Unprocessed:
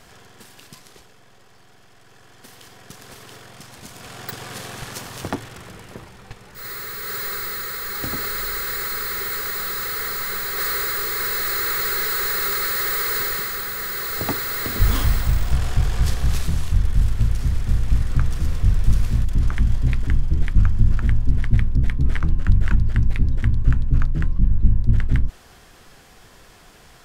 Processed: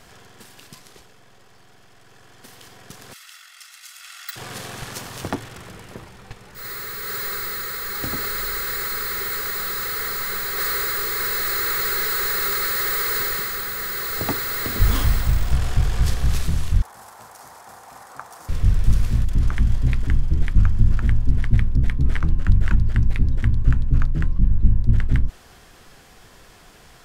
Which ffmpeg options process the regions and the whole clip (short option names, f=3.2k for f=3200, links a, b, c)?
-filter_complex "[0:a]asettb=1/sr,asplit=3[a][b][c];[a]atrim=end=3.134[d];[b]atrim=start=3.13:end=4.36,asetpts=PTS-STARTPTS,afade=t=in:d=0.004:c=qsin,afade=t=out:st=1.226:d=0.004:c=qsin,highpass=f=1.4k:w=0.5412,highpass=f=1.4k:w=1.3066,aecho=1:1:1.5:0.53,atrim=end_sample=54243[e];[c]atrim=start=4.356[f];[d][e]acrossfade=d=0.004:c1=hsin:c2=qsin[g];[g][f]acrossfade=d=0.004:c1=qsin:c2=hsin,asettb=1/sr,asplit=3[h][i][j];[h]atrim=end=16.824[k];[i]atrim=start=16.82:end=18.49,asetpts=PTS-STARTPTS,afade=t=in:d=0.004:c=qsin,afade=t=out:st=1.666:d=0.004:c=qsin,highpass=f=820:t=q:w=3.1,equalizer=f=2.9k:t=o:w=1.6:g=-13[l];[j]atrim=start=18.486[m];[k][l]acrossfade=d=0.004:c1=hsin:c2=qsin[n];[n][m]acrossfade=d=0.004:c1=qsin:c2=hsin"